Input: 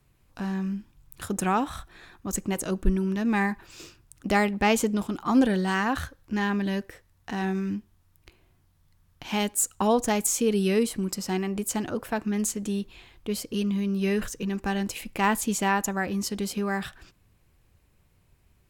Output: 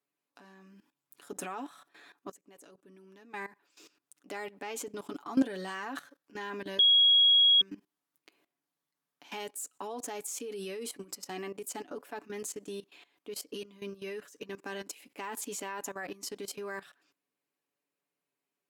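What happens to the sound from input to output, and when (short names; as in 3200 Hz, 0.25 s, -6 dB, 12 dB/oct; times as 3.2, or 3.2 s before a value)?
2.31–5.06 fade in, from -20 dB
6.79–7.61 bleep 3310 Hz -9 dBFS
whole clip: HPF 250 Hz 24 dB/oct; comb 7 ms, depth 57%; level quantiser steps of 17 dB; gain -4.5 dB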